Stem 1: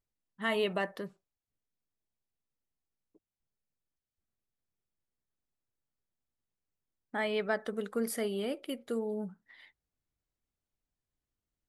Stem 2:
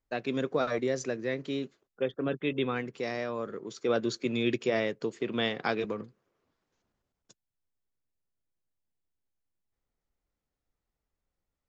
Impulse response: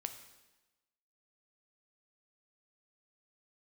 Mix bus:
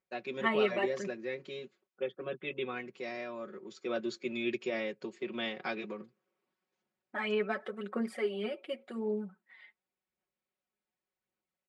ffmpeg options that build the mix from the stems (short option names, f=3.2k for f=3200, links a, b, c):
-filter_complex "[0:a]bass=f=250:g=-6,treble=f=4k:g=-13,aphaser=in_gain=1:out_gain=1:delay=4.8:decay=0.54:speed=0.88:type=sinusoidal,volume=-3.5dB[a];[1:a]volume=-9dB[b];[a][b]amix=inputs=2:normalize=0,highpass=140,equalizer=f=150:t=q:w=4:g=-5,equalizer=f=2.4k:t=q:w=4:g=5,equalizer=f=6k:t=q:w=4:g=-5,lowpass=f=9.1k:w=0.5412,lowpass=f=9.1k:w=1.3066,aecho=1:1:5.4:0.89"